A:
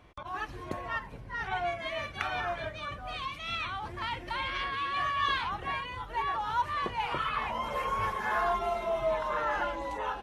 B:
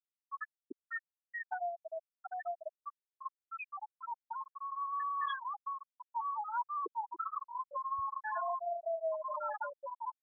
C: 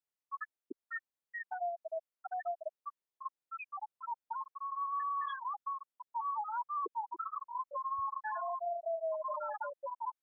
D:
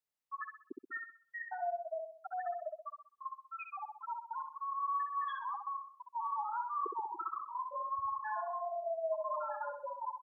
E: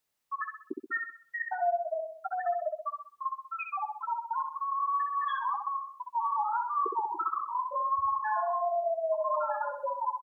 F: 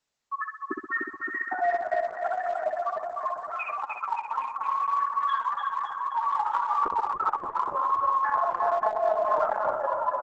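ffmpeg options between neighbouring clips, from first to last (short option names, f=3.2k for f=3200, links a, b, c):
-af "afftfilt=real='re*gte(hypot(re,im),0.158)':imag='im*gte(hypot(re,im),0.158)':win_size=1024:overlap=0.75,acompressor=threshold=-37dB:ratio=2"
-af "equalizer=f=550:w=0.39:g=6.5,alimiter=level_in=3dB:limit=-24dB:level=0:latency=1:release=108,volume=-3dB,volume=-3.5dB"
-filter_complex "[0:a]asplit=2[a][b];[b]adelay=64,lowpass=f=2.9k:p=1,volume=-4dB,asplit=2[c][d];[d]adelay=64,lowpass=f=2.9k:p=1,volume=0.44,asplit=2[e][f];[f]adelay=64,lowpass=f=2.9k:p=1,volume=0.44,asplit=2[g][h];[h]adelay=64,lowpass=f=2.9k:p=1,volume=0.44,asplit=2[i][j];[j]adelay=64,lowpass=f=2.9k:p=1,volume=0.44,asplit=2[k][l];[l]adelay=64,lowpass=f=2.9k:p=1,volume=0.44[m];[a][c][e][g][i][k][m]amix=inputs=7:normalize=0,volume=-1.5dB"
-filter_complex "[0:a]asplit=2[a][b];[b]acompressor=threshold=-44dB:ratio=6,volume=0dB[c];[a][c]amix=inputs=2:normalize=0,asplit=2[d][e];[e]adelay=13,volume=-11dB[f];[d][f]amix=inputs=2:normalize=0,volume=4.5dB"
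-af "aecho=1:1:300|570|813|1032|1229:0.631|0.398|0.251|0.158|0.1,volume=3dB" -ar 48000 -c:a libopus -b:a 12k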